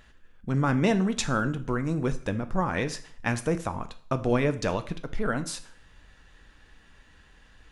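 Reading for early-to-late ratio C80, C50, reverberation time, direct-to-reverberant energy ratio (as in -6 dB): 19.0 dB, 15.5 dB, 0.50 s, 10.0 dB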